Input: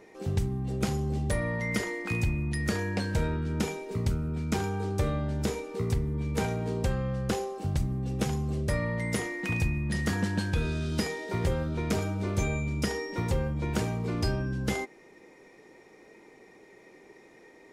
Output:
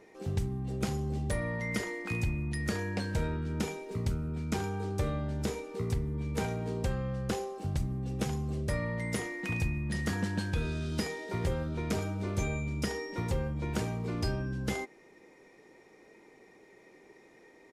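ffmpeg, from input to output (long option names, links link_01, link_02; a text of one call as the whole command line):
ffmpeg -i in.wav -af "aresample=32000,aresample=44100,volume=-3.5dB" out.wav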